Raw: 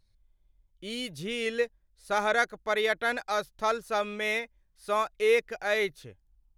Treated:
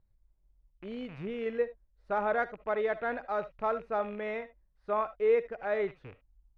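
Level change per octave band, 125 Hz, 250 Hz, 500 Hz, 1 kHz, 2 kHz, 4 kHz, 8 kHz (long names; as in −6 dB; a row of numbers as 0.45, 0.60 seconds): can't be measured, −1.5 dB, −1.5 dB, −3.0 dB, −9.0 dB, below −15 dB, below −30 dB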